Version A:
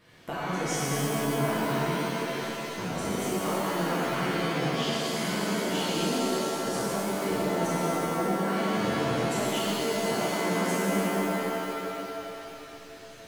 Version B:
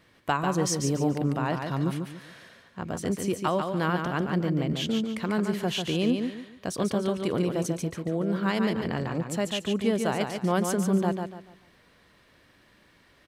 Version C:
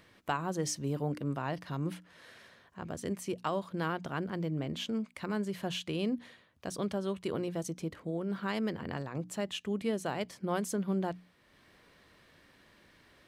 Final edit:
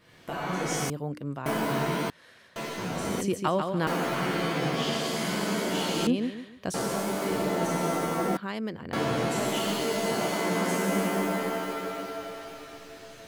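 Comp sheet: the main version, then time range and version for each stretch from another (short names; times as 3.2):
A
0.9–1.46 from C
2.1–2.56 from C
3.21–3.87 from B
6.07–6.74 from B
8.37–8.93 from C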